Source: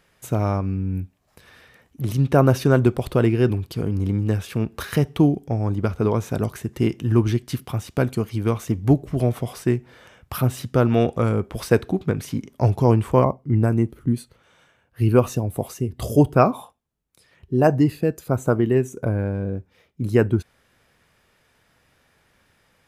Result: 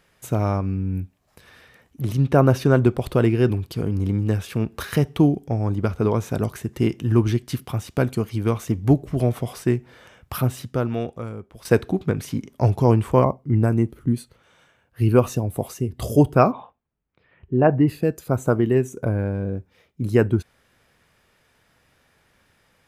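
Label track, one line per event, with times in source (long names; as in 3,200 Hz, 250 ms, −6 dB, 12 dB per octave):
2.070000	3.040000	high-shelf EQ 4,700 Hz −4.5 dB
10.360000	11.650000	fade out quadratic, to −14.5 dB
16.520000	17.880000	low-pass filter 2,700 Hz 24 dB per octave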